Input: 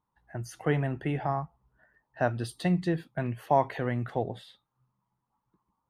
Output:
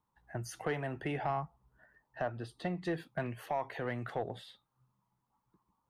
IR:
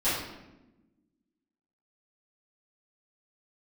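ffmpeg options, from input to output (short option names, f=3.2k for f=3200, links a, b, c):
-filter_complex "[0:a]asettb=1/sr,asplit=3[a][b][c];[a]atrim=end=2.224[d];[b]atrim=start=2.22:end=2.85,asetpts=PTS-STARTPTS,afade=t=in:d=0.004:c=qsin,afade=t=out:st=0.626:d=0.004:c=qsin,lowpass=f=1.6k:p=1[e];[c]atrim=start=2.846[f];[d][e]acrossfade=d=0.004:c1=hsin:c2=qsin[g];[g][f]acrossfade=d=0.004:c1=qsin:c2=hsin,acrossover=split=370|1200[h][i][j];[h]acompressor=threshold=-37dB:ratio=6[k];[k][i][j]amix=inputs=3:normalize=0,alimiter=limit=-21dB:level=0:latency=1:release=462,asoftclip=type=tanh:threshold=-24dB"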